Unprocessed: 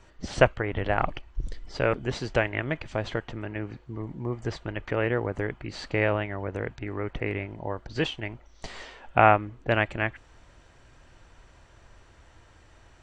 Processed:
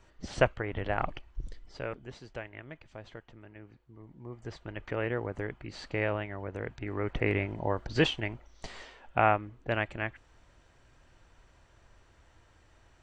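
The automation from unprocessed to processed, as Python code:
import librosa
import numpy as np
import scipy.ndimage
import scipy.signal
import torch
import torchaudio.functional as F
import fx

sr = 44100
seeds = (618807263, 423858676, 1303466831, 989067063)

y = fx.gain(x, sr, db=fx.line((1.3, -5.5), (2.2, -16.5), (3.97, -16.5), (4.83, -6.0), (6.56, -6.0), (7.3, 2.0), (8.06, 2.0), (8.94, -6.5)))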